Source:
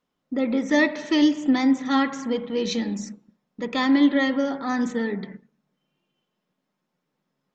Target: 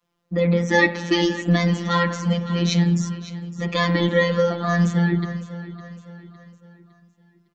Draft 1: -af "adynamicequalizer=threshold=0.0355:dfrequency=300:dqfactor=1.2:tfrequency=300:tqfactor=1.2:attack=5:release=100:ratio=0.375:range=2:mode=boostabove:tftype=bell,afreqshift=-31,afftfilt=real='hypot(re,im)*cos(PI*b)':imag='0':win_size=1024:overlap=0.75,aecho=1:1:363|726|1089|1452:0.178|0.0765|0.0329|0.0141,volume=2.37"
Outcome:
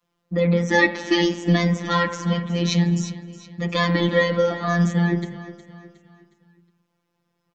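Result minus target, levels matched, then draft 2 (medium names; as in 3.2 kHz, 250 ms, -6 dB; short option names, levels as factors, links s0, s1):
echo 195 ms early
-af "adynamicequalizer=threshold=0.0355:dfrequency=300:dqfactor=1.2:tfrequency=300:tqfactor=1.2:attack=5:release=100:ratio=0.375:range=2:mode=boostabove:tftype=bell,afreqshift=-31,afftfilt=real='hypot(re,im)*cos(PI*b)':imag='0':win_size=1024:overlap=0.75,aecho=1:1:558|1116|1674|2232:0.178|0.0765|0.0329|0.0141,volume=2.37"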